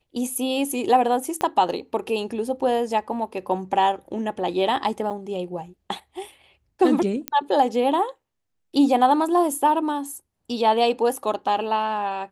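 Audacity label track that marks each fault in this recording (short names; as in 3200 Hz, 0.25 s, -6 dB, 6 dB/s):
1.410000	1.410000	pop -11 dBFS
5.100000	5.110000	gap 7.3 ms
7.280000	7.280000	pop -8 dBFS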